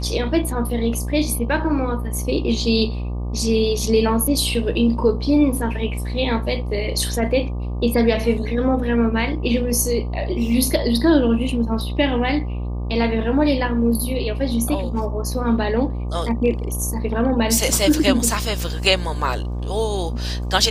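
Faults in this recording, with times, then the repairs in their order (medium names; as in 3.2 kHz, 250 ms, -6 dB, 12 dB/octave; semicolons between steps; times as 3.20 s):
buzz 60 Hz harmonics 20 -25 dBFS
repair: de-hum 60 Hz, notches 20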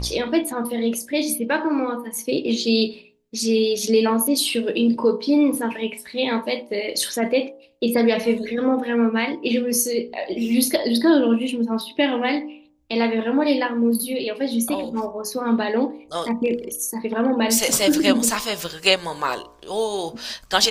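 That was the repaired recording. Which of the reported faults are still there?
nothing left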